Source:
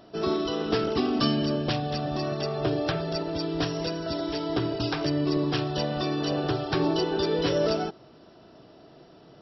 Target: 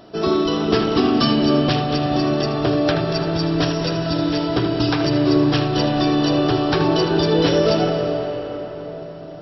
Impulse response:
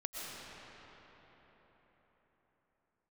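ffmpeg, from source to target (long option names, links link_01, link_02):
-filter_complex "[0:a]asplit=2[link_01][link_02];[1:a]atrim=start_sample=2205,lowpass=4700,adelay=78[link_03];[link_02][link_03]afir=irnorm=-1:irlink=0,volume=-4.5dB[link_04];[link_01][link_04]amix=inputs=2:normalize=0,volume=7dB"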